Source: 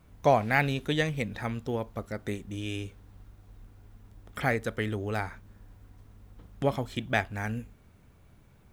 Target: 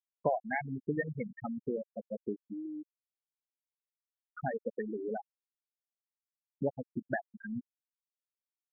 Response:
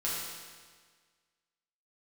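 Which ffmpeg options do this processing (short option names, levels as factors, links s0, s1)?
-filter_complex "[0:a]asplit=2[s0][s1];[1:a]atrim=start_sample=2205,adelay=145[s2];[s1][s2]afir=irnorm=-1:irlink=0,volume=0.0447[s3];[s0][s3]amix=inputs=2:normalize=0,acompressor=threshold=0.0282:ratio=3,highpass=160,lowpass=8000,asplit=2[s4][s5];[s5]adelay=180,highpass=300,lowpass=3400,asoftclip=type=hard:threshold=0.0501,volume=0.1[s6];[s4][s6]amix=inputs=2:normalize=0,afftfilt=real='re*gte(hypot(re,im),0.0891)':imag='im*gte(hypot(re,im),0.0891)':win_size=1024:overlap=0.75,volume=1.33"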